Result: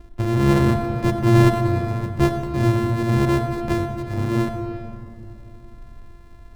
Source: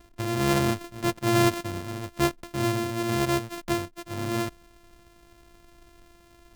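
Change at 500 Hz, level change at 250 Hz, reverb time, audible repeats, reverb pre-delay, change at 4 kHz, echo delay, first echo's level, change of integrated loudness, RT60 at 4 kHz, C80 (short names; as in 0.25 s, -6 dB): +6.0 dB, +7.0 dB, 2.9 s, none, 33 ms, -2.0 dB, none, none, +7.0 dB, 1.6 s, 7.5 dB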